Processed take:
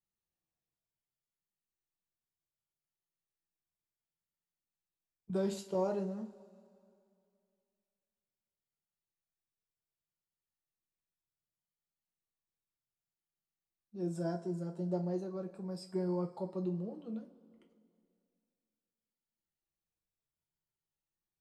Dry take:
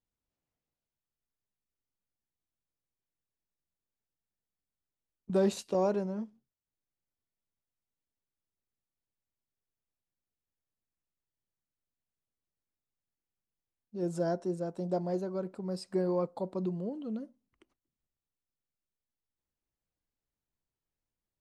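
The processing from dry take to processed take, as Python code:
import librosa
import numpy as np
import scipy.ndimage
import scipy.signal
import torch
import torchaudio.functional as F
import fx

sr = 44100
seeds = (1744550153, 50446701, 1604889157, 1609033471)

y = fx.spec_ripple(x, sr, per_octave=1.7, drift_hz=-0.67, depth_db=6)
y = fx.rev_double_slope(y, sr, seeds[0], early_s=0.25, late_s=2.5, knee_db=-22, drr_db=1.5)
y = F.gain(torch.from_numpy(y), -8.5).numpy()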